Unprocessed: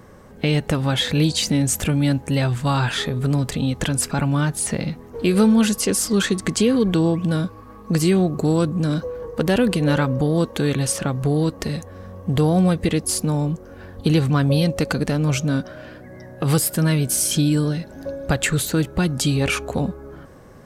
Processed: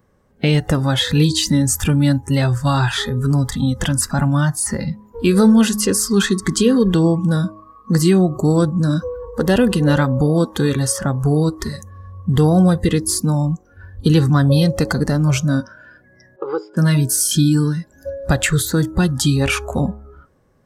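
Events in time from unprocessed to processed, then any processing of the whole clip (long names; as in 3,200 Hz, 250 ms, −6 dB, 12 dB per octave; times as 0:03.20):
0:16.36–0:16.77: loudspeaker in its box 400–2,900 Hz, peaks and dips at 400 Hz +8 dB, 680 Hz −7 dB, 1,100 Hz −4 dB, 1,800 Hz −10 dB, 2,700 Hz −7 dB
whole clip: noise reduction from a noise print of the clip's start 18 dB; low-shelf EQ 150 Hz +3.5 dB; hum removal 105.4 Hz, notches 10; level +3 dB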